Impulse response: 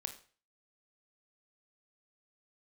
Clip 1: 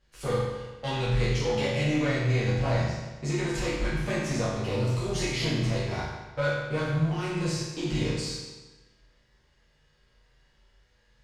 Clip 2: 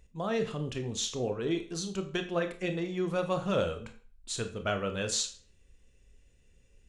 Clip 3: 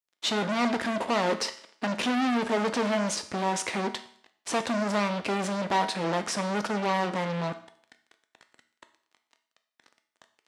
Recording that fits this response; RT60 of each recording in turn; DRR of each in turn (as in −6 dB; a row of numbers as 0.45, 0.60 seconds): 2; 1.2, 0.40, 0.60 seconds; −10.0, 6.5, 7.5 decibels